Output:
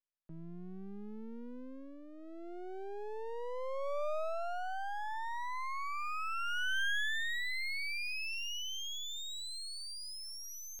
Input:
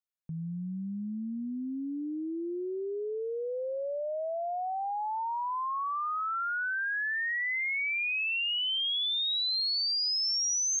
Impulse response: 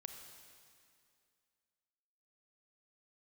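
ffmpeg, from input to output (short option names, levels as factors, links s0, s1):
-filter_complex "[0:a]highpass=170,equalizer=f=300:t=q:w=4:g=-9,equalizer=f=600:t=q:w=4:g=6,equalizer=f=1600:t=q:w=4:g=6,lowpass=f=5400:w=0.5412,lowpass=f=5400:w=1.3066,acrossover=split=2700[s0][s1];[s1]acompressor=threshold=0.0112:ratio=4:attack=1:release=60[s2];[s0][s2]amix=inputs=2:normalize=0,aeval=exprs='max(val(0),0)':c=same,volume=0.708"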